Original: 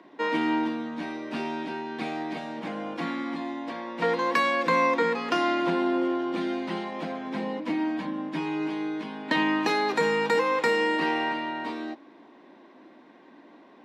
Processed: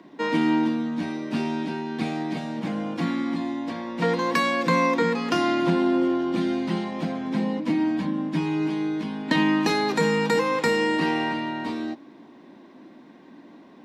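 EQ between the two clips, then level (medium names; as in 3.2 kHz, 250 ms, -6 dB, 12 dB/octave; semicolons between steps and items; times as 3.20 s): tone controls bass +14 dB, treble +7 dB; 0.0 dB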